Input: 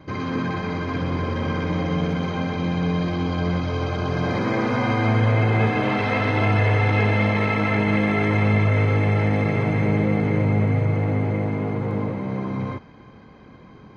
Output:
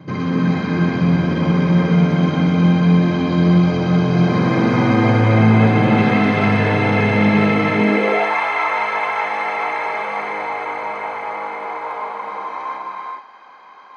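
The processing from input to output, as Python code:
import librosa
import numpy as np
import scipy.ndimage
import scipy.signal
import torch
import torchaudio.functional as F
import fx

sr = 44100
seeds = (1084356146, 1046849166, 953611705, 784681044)

y = fx.rev_gated(x, sr, seeds[0], gate_ms=450, shape='rising', drr_db=0.5)
y = fx.filter_sweep_highpass(y, sr, from_hz=150.0, to_hz=930.0, start_s=7.71, end_s=8.35, q=3.0)
y = y * librosa.db_to_amplitude(2.0)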